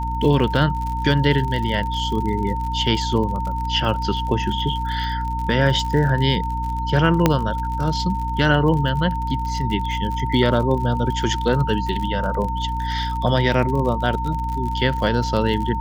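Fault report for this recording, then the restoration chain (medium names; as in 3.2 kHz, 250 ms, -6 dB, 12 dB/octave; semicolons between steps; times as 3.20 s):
crackle 55 per s -27 dBFS
hum 60 Hz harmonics 5 -26 dBFS
whine 910 Hz -25 dBFS
7.26 s: pop -1 dBFS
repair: de-click; de-hum 60 Hz, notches 5; band-stop 910 Hz, Q 30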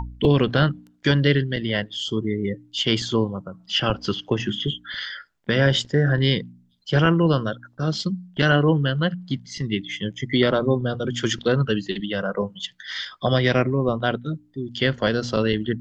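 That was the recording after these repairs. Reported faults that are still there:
nothing left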